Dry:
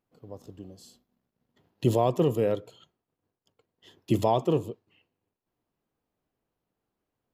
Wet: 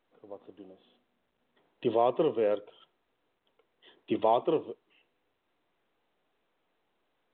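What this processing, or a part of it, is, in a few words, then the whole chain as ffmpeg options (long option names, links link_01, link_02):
telephone: -af "highpass=360,lowpass=3300" -ar 8000 -c:a pcm_mulaw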